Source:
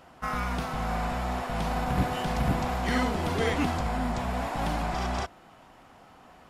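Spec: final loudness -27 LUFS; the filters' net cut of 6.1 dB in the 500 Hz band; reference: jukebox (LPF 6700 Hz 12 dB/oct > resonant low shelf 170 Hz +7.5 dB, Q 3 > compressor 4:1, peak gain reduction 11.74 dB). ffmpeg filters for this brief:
-af "lowpass=6.7k,lowshelf=f=170:t=q:w=3:g=7.5,equalizer=f=500:t=o:g=-7,acompressor=threshold=-26dB:ratio=4,volume=4dB"

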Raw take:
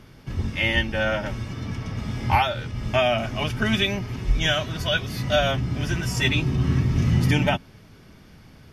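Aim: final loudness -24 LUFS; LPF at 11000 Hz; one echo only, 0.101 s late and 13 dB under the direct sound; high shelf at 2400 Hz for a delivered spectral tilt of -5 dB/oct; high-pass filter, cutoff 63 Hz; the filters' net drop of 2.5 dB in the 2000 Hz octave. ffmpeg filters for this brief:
-af "highpass=63,lowpass=11k,equalizer=f=2k:t=o:g=-6,highshelf=f=2.4k:g=5,aecho=1:1:101:0.224"

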